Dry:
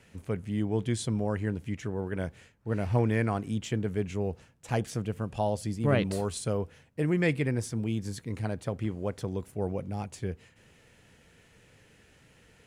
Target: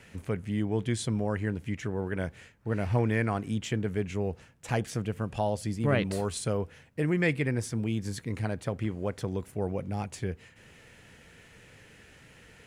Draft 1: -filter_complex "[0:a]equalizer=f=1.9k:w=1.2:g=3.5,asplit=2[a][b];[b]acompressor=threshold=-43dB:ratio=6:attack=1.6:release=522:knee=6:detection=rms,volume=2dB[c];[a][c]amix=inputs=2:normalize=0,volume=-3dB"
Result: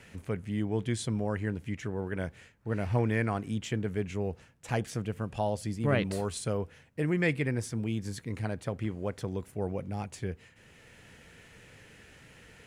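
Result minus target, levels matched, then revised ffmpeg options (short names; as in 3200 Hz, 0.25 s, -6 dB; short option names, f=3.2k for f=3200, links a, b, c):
compressor: peak gain reduction +9 dB
-filter_complex "[0:a]equalizer=f=1.9k:w=1.2:g=3.5,asplit=2[a][b];[b]acompressor=threshold=-32.5dB:ratio=6:attack=1.6:release=522:knee=6:detection=rms,volume=2dB[c];[a][c]amix=inputs=2:normalize=0,volume=-3dB"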